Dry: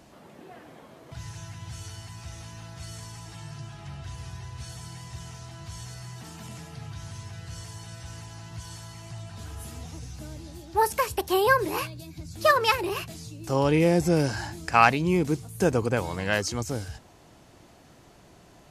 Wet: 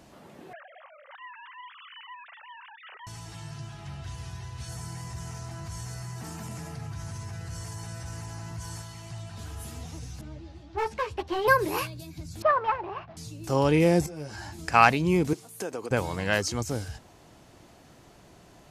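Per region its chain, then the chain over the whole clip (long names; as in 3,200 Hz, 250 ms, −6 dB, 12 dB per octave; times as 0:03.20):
0:00.53–0:03.07: three sine waves on the formant tracks + high-pass filter 1,100 Hz + high-frequency loss of the air 340 metres
0:04.68–0:08.82: parametric band 3,400 Hz −8.5 dB 0.87 octaves + envelope flattener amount 50%
0:10.21–0:11.48: low-pass filter 3,400 Hz + hard clipping −19 dBFS + string-ensemble chorus
0:12.42–0:13.17: variable-slope delta modulation 32 kbit/s + low-pass filter 1,200 Hz + low shelf with overshoot 550 Hz −8 dB, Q 1.5
0:14.06–0:14.59: downward compressor 12 to 1, threshold −31 dBFS + string-ensemble chorus
0:15.33–0:15.91: high-pass filter 310 Hz + downward compressor 3 to 1, threshold −32 dBFS
whole clip: no processing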